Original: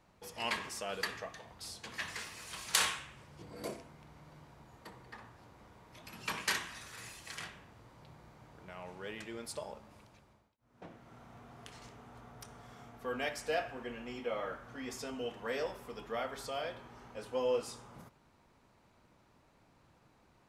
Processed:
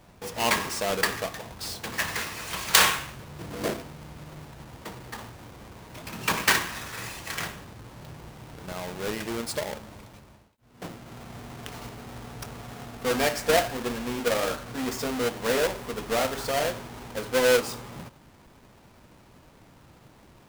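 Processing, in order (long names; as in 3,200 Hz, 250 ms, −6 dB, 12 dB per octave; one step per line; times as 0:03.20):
each half-wave held at its own peak
level +8 dB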